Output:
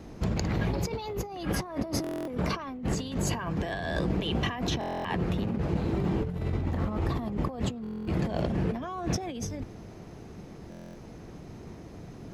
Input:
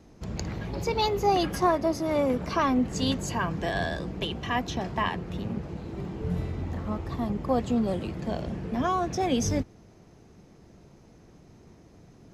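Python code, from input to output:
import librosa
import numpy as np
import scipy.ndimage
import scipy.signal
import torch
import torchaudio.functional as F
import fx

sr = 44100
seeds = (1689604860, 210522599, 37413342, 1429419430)

y = fx.peak_eq(x, sr, hz=6400.0, db=-4.0, octaves=0.96)
y = fx.over_compress(y, sr, threshold_db=-35.0, ratio=-1.0)
y = fx.buffer_glitch(y, sr, at_s=(2.02, 4.79, 7.82, 10.7), block=1024, repeats=10)
y = y * 10.0 ** (3.5 / 20.0)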